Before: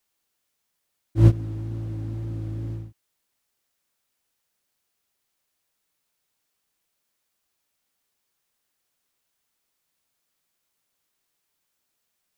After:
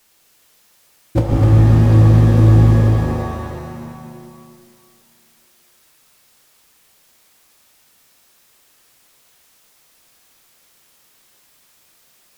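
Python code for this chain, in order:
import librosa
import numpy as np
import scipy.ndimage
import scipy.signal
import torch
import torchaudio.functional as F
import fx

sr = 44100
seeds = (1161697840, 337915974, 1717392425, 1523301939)

p1 = fx.hum_notches(x, sr, base_hz=50, count=2)
p2 = fx.over_compress(p1, sr, threshold_db=-22.0, ratio=-0.5)
p3 = fx.fold_sine(p2, sr, drive_db=14, ceiling_db=-7.0)
p4 = p3 + fx.echo_single(p3, sr, ms=254, db=-6.0, dry=0)
p5 = fx.rev_shimmer(p4, sr, seeds[0], rt60_s=2.0, semitones=7, shimmer_db=-2, drr_db=2.5)
y = p5 * 10.0 ** (-2.5 / 20.0)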